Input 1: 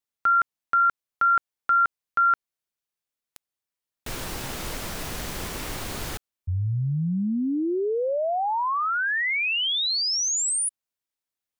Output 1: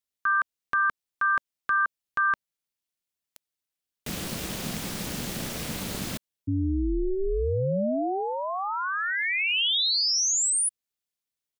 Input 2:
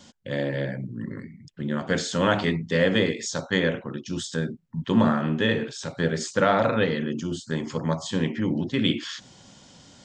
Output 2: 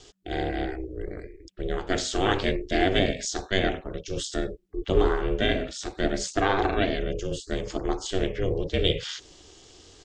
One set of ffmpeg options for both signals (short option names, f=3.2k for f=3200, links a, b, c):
-af "firequalizer=gain_entry='entry(410,0);entry(740,-5);entry(3000,1)':delay=0.05:min_phase=1,aeval=exprs='val(0)*sin(2*PI*190*n/s)':c=same,volume=2.5dB"